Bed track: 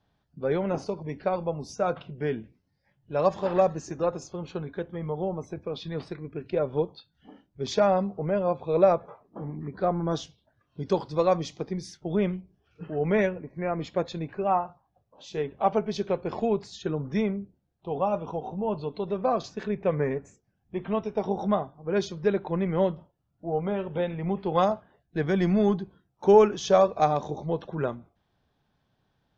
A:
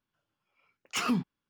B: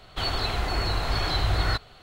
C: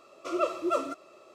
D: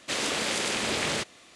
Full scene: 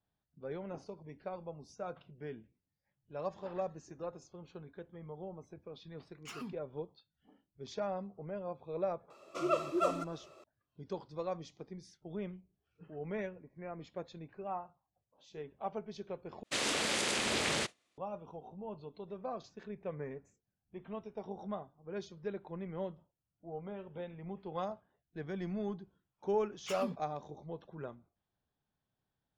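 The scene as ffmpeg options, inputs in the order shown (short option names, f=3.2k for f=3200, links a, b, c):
-filter_complex "[1:a]asplit=2[a][b];[0:a]volume=-15.5dB[c];[4:a]agate=range=-33dB:threshold=-42dB:ratio=3:release=100:detection=peak[d];[c]asplit=2[e][f];[e]atrim=end=16.434[g];[d]atrim=end=1.55,asetpts=PTS-STARTPTS,volume=-4.5dB[h];[f]atrim=start=17.976[i];[a]atrim=end=1.49,asetpts=PTS-STARTPTS,volume=-16.5dB,afade=t=in:d=0.004:c=hsin,afade=t=out:st=1.486:d=0.004:c=hsin,adelay=5320[j];[3:a]atrim=end=1.34,asetpts=PTS-STARTPTS,volume=-3.5dB,afade=t=in:d=0.004:c=hsin,afade=t=out:st=1.336:d=0.004:c=hsin,adelay=9100[k];[b]atrim=end=1.49,asetpts=PTS-STARTPTS,volume=-12dB,afade=t=in:d=0.004:c=hsin,afade=t=out:st=1.486:d=0.004:c=hsin,adelay=25730[l];[g][h]acrossfade=d=0.004:c1=hsin:c2=hsin[m];[m][i]acrossfade=d=0.004:c1=hsin:c2=hsin[n];[n][j][k][l]amix=inputs=4:normalize=0"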